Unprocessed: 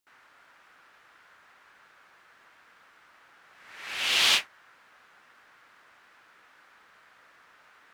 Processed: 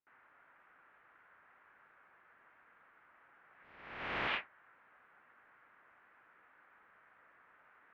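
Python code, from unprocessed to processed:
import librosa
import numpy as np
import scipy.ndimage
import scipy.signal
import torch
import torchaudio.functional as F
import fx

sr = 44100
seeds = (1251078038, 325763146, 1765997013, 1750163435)

y = fx.spec_flatten(x, sr, power=0.31, at=(3.63, 4.27), fade=0.02)
y = scipy.signal.sosfilt(scipy.signal.butter(4, 2200.0, 'lowpass', fs=sr, output='sos'), y)
y = y * librosa.db_to_amplitude(-6.5)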